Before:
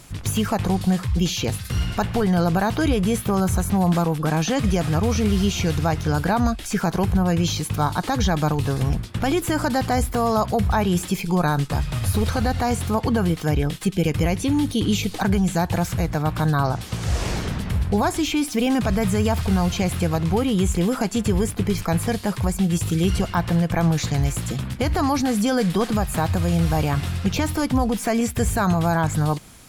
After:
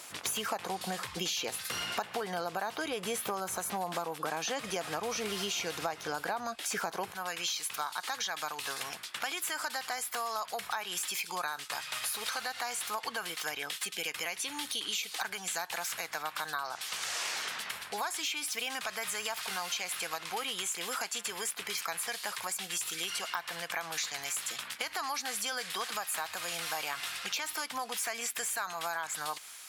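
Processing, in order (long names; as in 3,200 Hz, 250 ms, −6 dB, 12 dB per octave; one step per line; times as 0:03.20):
high-pass filter 590 Hz 12 dB per octave, from 0:07.12 1,300 Hz
downward compressor 6 to 1, threshold −33 dBFS, peak gain reduction 14 dB
level +1.5 dB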